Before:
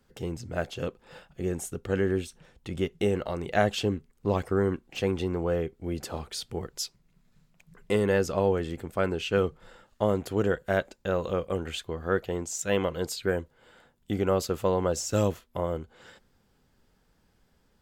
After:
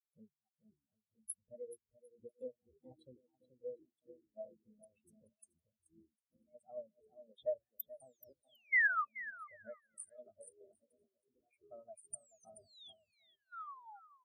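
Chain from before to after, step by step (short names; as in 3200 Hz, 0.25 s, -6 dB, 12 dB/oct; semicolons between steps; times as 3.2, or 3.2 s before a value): Wiener smoothing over 15 samples; painted sound fall, 9.75–11.31, 910–11000 Hz -23 dBFS; compressor 3:1, threshold -38 dBFS, peak gain reduction 15 dB; chopper 1.1 Hz, depth 65%, duty 45%; echoes that change speed 0.558 s, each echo -7 st, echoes 3, each echo -6 dB; pre-emphasis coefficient 0.9; varispeed +25%; treble ducked by the level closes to 2300 Hz, closed at -44 dBFS; resonant high shelf 7900 Hz +13.5 dB, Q 1.5; bouncing-ball echo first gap 0.43 s, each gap 0.75×, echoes 5; on a send at -13 dB: reverb RT60 0.50 s, pre-delay 3 ms; on the sum: spectral expander 4:1; gain +7 dB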